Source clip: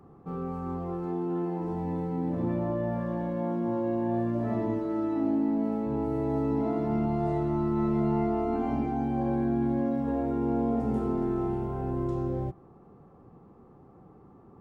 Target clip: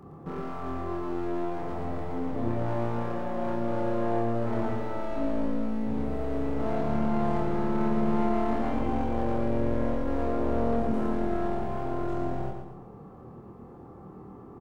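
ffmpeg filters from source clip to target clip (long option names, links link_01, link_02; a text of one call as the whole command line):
ffmpeg -i in.wav -filter_complex "[0:a]asettb=1/sr,asplit=3[link_01][link_02][link_03];[link_01]atrim=end=5.454[link_04];[link_02]atrim=start=5.45:end=6.59,asetpts=PTS-STARTPTS,afade=type=in:duration=0.004:curve=qsin,afade=type=out:start_time=1.136:duration=0.004:curve=qsin,equalizer=frequency=1000:width=2.3:gain=-15[link_05];[link_03]atrim=start=6.586[link_06];[link_04][link_05]acrossfade=duration=0.004:curve1=hsin:curve2=qsin[link_07];[link_07][link_06]acrossfade=duration=0.004:curve1=qsin:curve2=hsin,asplit=2[link_08][link_09];[link_09]acompressor=threshold=-38dB:ratio=6,volume=1dB[link_10];[link_08][link_10]amix=inputs=2:normalize=0,aeval=exprs='clip(val(0),-1,0.0178)':channel_layout=same,asplit=2[link_11][link_12];[link_12]adelay=26,volume=-3dB[link_13];[link_11][link_13]amix=inputs=2:normalize=0,aecho=1:1:114|228|342|456|570:0.531|0.223|0.0936|0.0393|0.0165,volume=-2dB" out.wav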